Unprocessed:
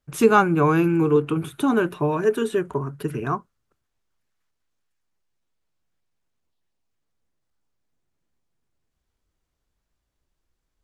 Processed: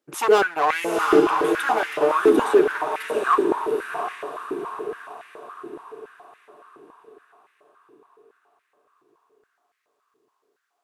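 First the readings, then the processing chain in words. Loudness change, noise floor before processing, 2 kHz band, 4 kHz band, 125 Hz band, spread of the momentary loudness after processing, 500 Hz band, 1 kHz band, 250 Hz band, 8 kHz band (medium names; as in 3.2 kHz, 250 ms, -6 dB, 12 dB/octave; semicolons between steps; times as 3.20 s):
0.0 dB, -78 dBFS, +4.0 dB, +6.0 dB, -19.5 dB, 21 LU, +3.0 dB, +4.0 dB, -3.0 dB, +2.5 dB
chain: hard clipper -18.5 dBFS, distortion -8 dB; echo that smears into a reverb 776 ms, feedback 47%, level -3 dB; step-sequenced high-pass 7.1 Hz 340–2000 Hz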